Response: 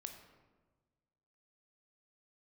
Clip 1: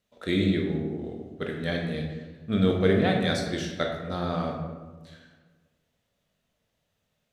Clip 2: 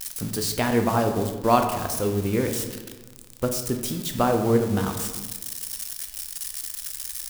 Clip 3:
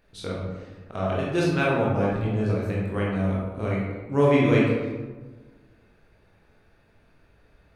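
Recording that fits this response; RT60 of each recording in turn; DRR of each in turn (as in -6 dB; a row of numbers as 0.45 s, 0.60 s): 2; 1.3 s, 1.4 s, 1.3 s; 0.5 dB, 5.0 dB, -5.0 dB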